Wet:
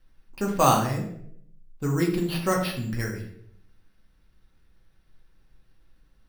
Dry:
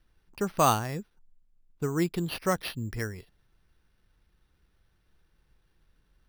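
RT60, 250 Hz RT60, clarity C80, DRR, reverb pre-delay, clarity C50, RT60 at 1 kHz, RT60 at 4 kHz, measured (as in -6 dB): 0.70 s, 0.85 s, 10.5 dB, -1.0 dB, 4 ms, 6.5 dB, 0.60 s, 0.50 s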